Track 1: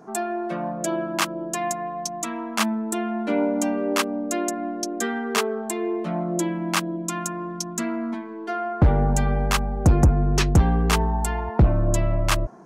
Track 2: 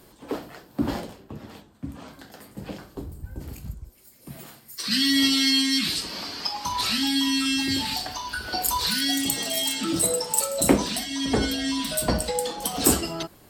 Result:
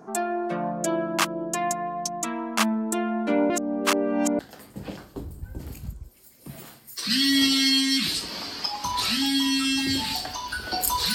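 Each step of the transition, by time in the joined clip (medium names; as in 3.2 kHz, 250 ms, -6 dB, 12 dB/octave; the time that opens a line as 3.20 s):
track 1
3.50–4.39 s: reverse
4.39 s: go over to track 2 from 2.20 s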